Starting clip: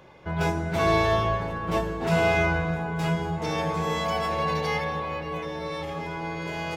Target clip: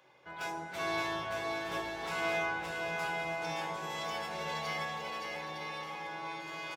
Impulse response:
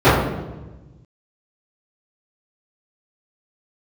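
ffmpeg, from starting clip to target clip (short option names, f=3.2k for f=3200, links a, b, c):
-filter_complex "[0:a]highpass=f=1.3k:p=1,aecho=1:1:570|912|1117|1240|1314:0.631|0.398|0.251|0.158|0.1,asplit=2[a][b];[1:a]atrim=start_sample=2205,lowpass=f=1.2k:w=0.5412,lowpass=f=1.2k:w=1.3066[c];[b][c]afir=irnorm=-1:irlink=0,volume=-33.5dB[d];[a][d]amix=inputs=2:normalize=0,volume=-7dB"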